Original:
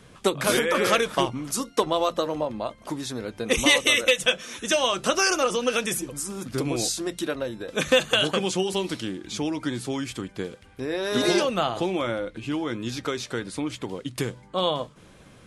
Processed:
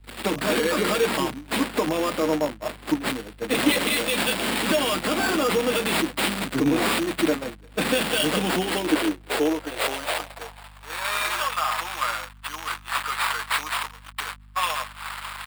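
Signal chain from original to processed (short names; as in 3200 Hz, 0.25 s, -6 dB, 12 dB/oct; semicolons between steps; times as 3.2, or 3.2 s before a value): switching spikes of -19 dBFS; gate -27 dBFS, range -29 dB; comb 6.5 ms, depth 70%; limiter -15 dBFS, peak gain reduction 10 dB; sample-rate reducer 6100 Hz, jitter 0%; high-pass sweep 220 Hz -> 1100 Hz, 8.32–11.13; hum 50 Hz, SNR 20 dB; three-band expander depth 70%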